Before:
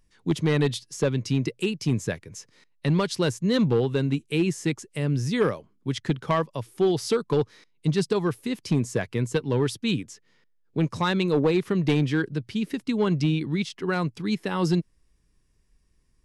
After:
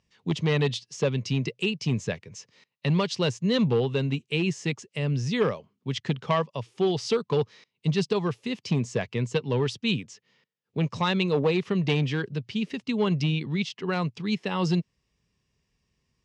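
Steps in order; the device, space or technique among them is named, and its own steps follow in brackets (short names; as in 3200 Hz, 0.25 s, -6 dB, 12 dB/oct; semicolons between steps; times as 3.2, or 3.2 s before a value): car door speaker (speaker cabinet 95–6700 Hz, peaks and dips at 310 Hz -9 dB, 1500 Hz -5 dB, 2800 Hz +5 dB)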